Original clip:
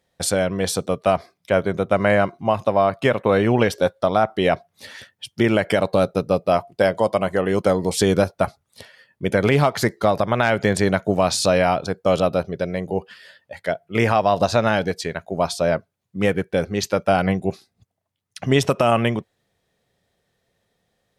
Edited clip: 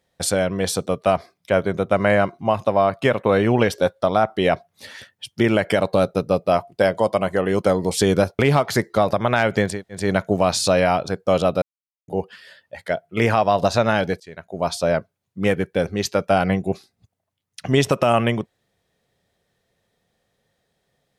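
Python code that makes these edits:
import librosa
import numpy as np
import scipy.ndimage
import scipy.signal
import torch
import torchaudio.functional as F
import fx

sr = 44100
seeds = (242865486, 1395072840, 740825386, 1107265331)

y = fx.edit(x, sr, fx.cut(start_s=8.39, length_s=1.07),
    fx.insert_room_tone(at_s=10.79, length_s=0.29, crossfade_s=0.24),
    fx.silence(start_s=12.4, length_s=0.46),
    fx.fade_in_from(start_s=14.98, length_s=0.55, floor_db=-23.0), tone=tone)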